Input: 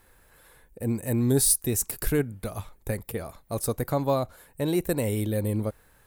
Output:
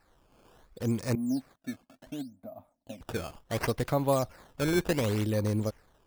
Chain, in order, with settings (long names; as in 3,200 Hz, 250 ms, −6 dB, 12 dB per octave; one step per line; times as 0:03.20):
0:01.15–0:03.01: pair of resonant band-passes 410 Hz, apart 1.3 octaves
sample-and-hold swept by an LFO 13×, swing 160% 0.69 Hz
automatic gain control gain up to 5 dB
level −6.5 dB